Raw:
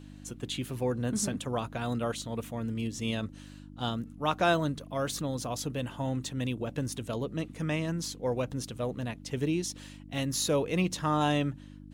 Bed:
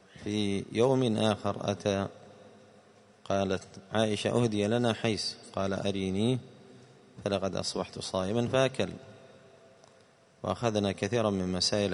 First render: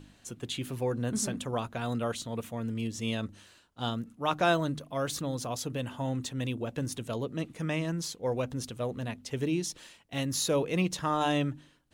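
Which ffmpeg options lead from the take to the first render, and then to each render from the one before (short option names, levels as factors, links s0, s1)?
-af "bandreject=f=50:t=h:w=4,bandreject=f=100:t=h:w=4,bandreject=f=150:t=h:w=4,bandreject=f=200:t=h:w=4,bandreject=f=250:t=h:w=4,bandreject=f=300:t=h:w=4"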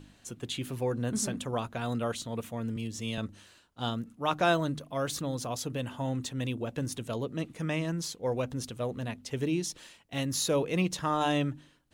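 -filter_complex "[0:a]asettb=1/sr,asplit=3[s0][s1][s2];[s0]atrim=end=2.764[s3];[s1]atrim=start=2.76:end=3.18,asetpts=PTS-STARTPTS,afade=t=in:d=0.004:c=qsin,afade=t=out:st=0.416:d=0.004:c=qsin,acrossover=split=120|3000[s4][s5][s6];[s5]acompressor=threshold=0.0112:ratio=1.5:attack=3.2:release=140:knee=2.83:detection=peak[s7];[s4][s7][s6]amix=inputs=3:normalize=0[s8];[s2]atrim=start=3.176[s9];[s3][s8]acrossfade=d=0.004:c1=hsin:c2=qsin[s10];[s10][s9]acrossfade=d=0.004:c1=qsin:c2=hsin"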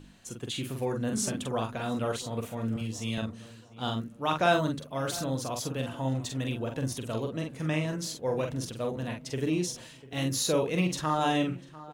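-filter_complex "[0:a]asplit=2[s0][s1];[s1]adelay=45,volume=0.596[s2];[s0][s2]amix=inputs=2:normalize=0,asplit=2[s3][s4];[s4]adelay=696,lowpass=f=1800:p=1,volume=0.141,asplit=2[s5][s6];[s6]adelay=696,lowpass=f=1800:p=1,volume=0.45,asplit=2[s7][s8];[s8]adelay=696,lowpass=f=1800:p=1,volume=0.45,asplit=2[s9][s10];[s10]adelay=696,lowpass=f=1800:p=1,volume=0.45[s11];[s3][s5][s7][s9][s11]amix=inputs=5:normalize=0"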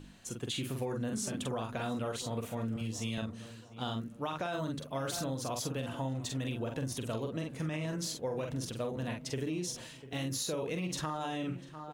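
-af "alimiter=limit=0.0794:level=0:latency=1:release=90,acompressor=threshold=0.0251:ratio=6"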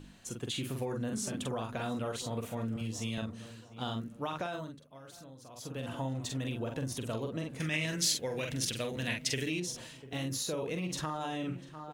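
-filter_complex "[0:a]asettb=1/sr,asplit=3[s0][s1][s2];[s0]atrim=end=7.604[s3];[s1]atrim=start=7.6:end=9.6,asetpts=PTS-STARTPTS,afade=t=in:d=0.004:c=qsin,afade=t=out:st=1.996:d=0.004:c=qsin,highshelf=f=1500:t=q:w=1.5:g=9[s4];[s2]atrim=start=9.596[s5];[s3][s4]acrossfade=d=0.004:c1=hsin:c2=qsin[s6];[s6][s5]acrossfade=d=0.004:c1=qsin:c2=hsin,asplit=3[s7][s8][s9];[s7]atrim=end=4.79,asetpts=PTS-STARTPTS,afade=t=out:st=4.42:d=0.37:silence=0.16788[s10];[s8]atrim=start=4.79:end=5.53,asetpts=PTS-STARTPTS,volume=0.168[s11];[s9]atrim=start=5.53,asetpts=PTS-STARTPTS,afade=t=in:d=0.37:silence=0.16788[s12];[s10][s11][s12]concat=n=3:v=0:a=1"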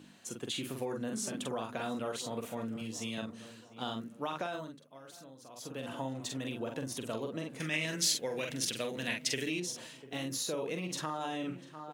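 -af "highpass=190"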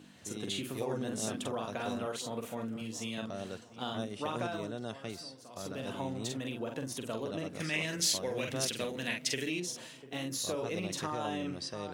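-filter_complex "[1:a]volume=0.224[s0];[0:a][s0]amix=inputs=2:normalize=0"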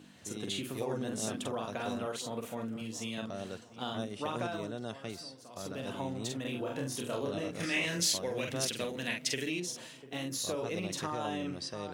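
-filter_complex "[0:a]asettb=1/sr,asplit=3[s0][s1][s2];[s0]atrim=end=6.424[s3];[s1]atrim=start=6.42:end=8.03,asetpts=PTS-STARTPTS,afade=t=in:d=0.004:c=qsin,afade=t=out:st=1.606:d=0.004:c=qsin,asplit=2[s4][s5];[s5]adelay=29,volume=0.794[s6];[s4][s6]amix=inputs=2:normalize=0,atrim=end_sample=71001[s7];[s2]atrim=start=8.026[s8];[s3][s7]acrossfade=d=0.004:c1=hsin:c2=qsin[s9];[s9][s8]acrossfade=d=0.004:c1=qsin:c2=hsin"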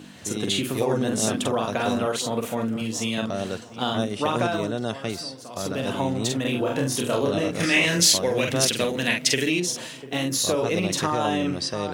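-af "volume=3.98"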